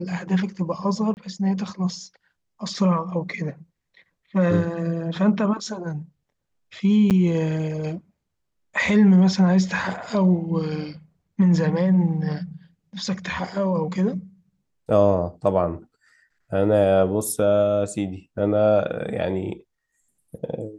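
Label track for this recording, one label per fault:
1.140000	1.170000	dropout 29 ms
7.100000	7.110000	dropout 8.2 ms

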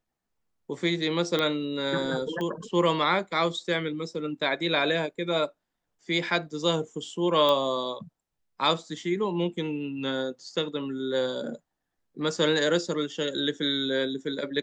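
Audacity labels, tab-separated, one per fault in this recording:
1.390000	1.390000	pop -13 dBFS
2.410000	2.410000	pop -21 dBFS
7.490000	7.490000	pop -13 dBFS

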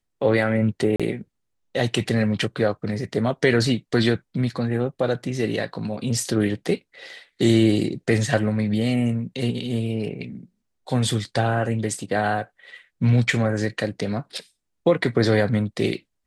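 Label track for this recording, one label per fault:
0.960000	1.000000	dropout 36 ms

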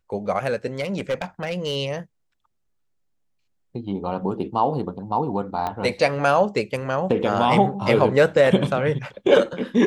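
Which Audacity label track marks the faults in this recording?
0.800000	1.770000	clipped -19 dBFS
5.670000	5.670000	pop -14 dBFS

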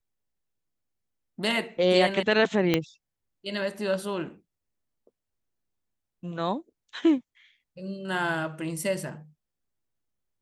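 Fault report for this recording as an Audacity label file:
2.740000	2.740000	pop -9 dBFS

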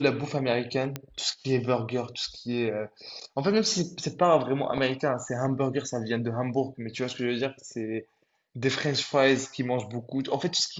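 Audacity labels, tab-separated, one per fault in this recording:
0.960000	0.960000	pop -16 dBFS

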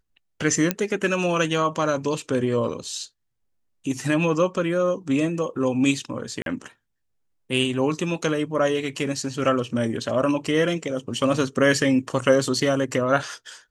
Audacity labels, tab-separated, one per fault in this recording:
0.710000	0.710000	pop -5 dBFS
6.420000	6.460000	dropout 42 ms

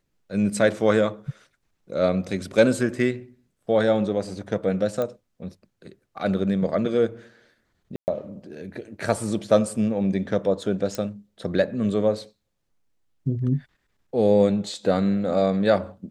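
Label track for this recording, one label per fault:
5.020000	5.020000	pop -15 dBFS
7.960000	8.080000	dropout 119 ms
10.950000	10.950000	pop -15 dBFS

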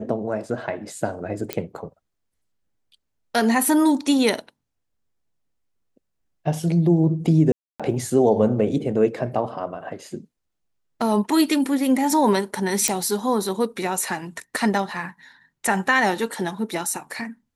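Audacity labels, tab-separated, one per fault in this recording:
1.530000	1.530000	pop -8 dBFS
7.520000	7.800000	dropout 276 ms
12.880000	12.880000	pop -4 dBFS

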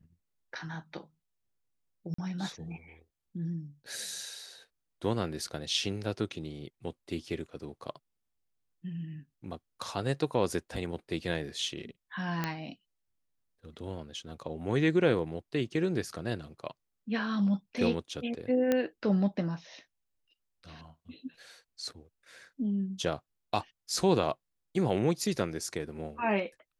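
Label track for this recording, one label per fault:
2.140000	2.180000	dropout 44 ms
12.440000	12.440000	pop -16 dBFS
18.720000	18.720000	pop -14 dBFS

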